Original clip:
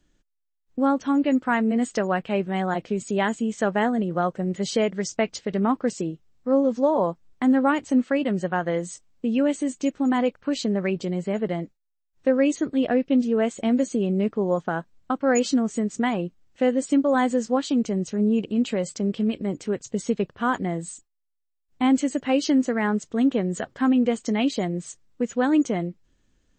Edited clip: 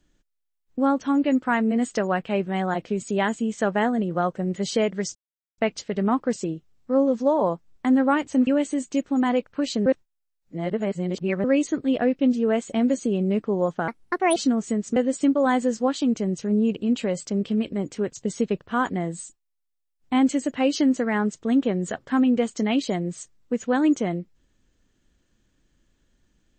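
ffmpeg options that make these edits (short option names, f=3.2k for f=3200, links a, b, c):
-filter_complex "[0:a]asplit=8[a][b][c][d][e][f][g][h];[a]atrim=end=5.15,asetpts=PTS-STARTPTS,afade=t=out:st=5.146:d=0.004:c=hsin,apad=pad_dur=0.43[i];[b]atrim=start=5.15:end=8.042,asetpts=PTS-STARTPTS,afade=t=in:d=0.004:c=hsin[j];[c]atrim=start=9.358:end=10.752[k];[d]atrim=start=10.748:end=12.332,asetpts=PTS-STARTPTS,areverse[l];[e]atrim=start=12.328:end=14.774[m];[f]atrim=start=14.77:end=15.43,asetpts=PTS-STARTPTS,asetrate=60417,aresample=44100,atrim=end_sample=21245,asetpts=PTS-STARTPTS[n];[g]atrim=start=15.426:end=16.032[o];[h]atrim=start=16.648[p];[i][j]concat=n=2:v=0:a=1[q];[q][k]acrossfade=d=0.004:c1=hsin:c2=hsin[r];[r][l]acrossfade=d=0.004:c1=hsin:c2=hsin[s];[s][m]acrossfade=d=0.004:c1=hsin:c2=hsin[t];[t][n]acrossfade=d=0.004:c1=hsin:c2=hsin[u];[u][o]acrossfade=d=0.004:c1=hsin:c2=hsin[v];[v][p]acrossfade=d=0.004:c1=hsin:c2=hsin"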